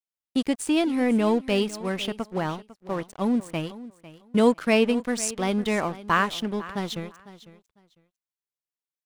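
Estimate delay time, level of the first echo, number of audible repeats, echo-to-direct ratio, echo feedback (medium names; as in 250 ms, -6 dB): 501 ms, -17.0 dB, 2, -17.0 dB, 19%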